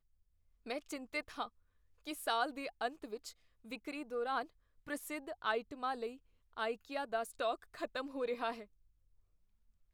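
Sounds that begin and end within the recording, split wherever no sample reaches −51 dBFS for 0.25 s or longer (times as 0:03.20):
0:00.66–0:01.48
0:02.05–0:03.32
0:03.65–0:04.49
0:04.87–0:06.16
0:06.57–0:08.64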